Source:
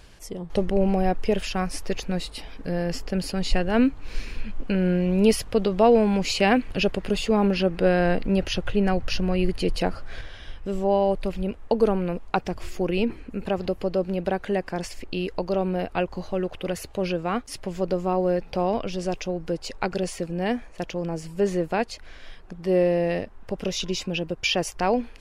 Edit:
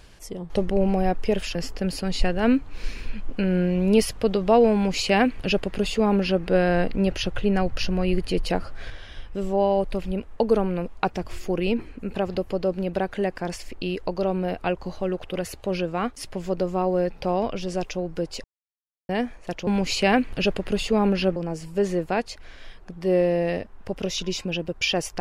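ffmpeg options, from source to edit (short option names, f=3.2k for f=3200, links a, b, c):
-filter_complex "[0:a]asplit=6[a][b][c][d][e][f];[a]atrim=end=1.552[g];[b]atrim=start=2.858:end=19.75,asetpts=PTS-STARTPTS,afade=t=out:st=16.888:d=0.004:c=hsin[h];[c]atrim=start=19.75:end=20.4,asetpts=PTS-STARTPTS,volume=0[i];[d]atrim=start=20.4:end=20.982,asetpts=PTS-STARTPTS,afade=t=in:d=0.004:c=hsin[j];[e]atrim=start=6.048:end=7.742[k];[f]atrim=start=20.978[l];[h][i][j]concat=n=3:v=0:a=1[m];[g][m]acrossfade=d=0.004:c1=hsin:c2=hsin[n];[n][k]acrossfade=d=0.004:c1=hsin:c2=hsin[o];[o][l]acrossfade=d=0.004:c1=hsin:c2=hsin"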